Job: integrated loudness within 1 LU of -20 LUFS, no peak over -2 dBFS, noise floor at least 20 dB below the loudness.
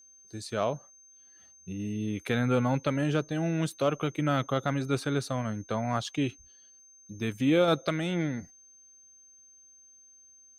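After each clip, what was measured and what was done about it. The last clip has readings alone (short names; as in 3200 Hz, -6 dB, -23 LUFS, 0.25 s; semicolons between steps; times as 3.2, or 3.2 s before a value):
steady tone 6300 Hz; tone level -54 dBFS; loudness -29.5 LUFS; peak -14.5 dBFS; loudness target -20.0 LUFS
-> notch 6300 Hz, Q 30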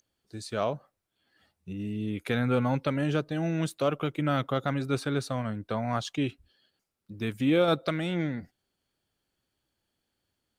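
steady tone none; loudness -29.5 LUFS; peak -14.5 dBFS; loudness target -20.0 LUFS
-> gain +9.5 dB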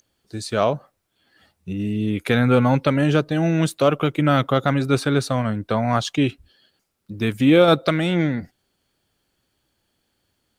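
loudness -20.0 LUFS; peak -5.0 dBFS; noise floor -73 dBFS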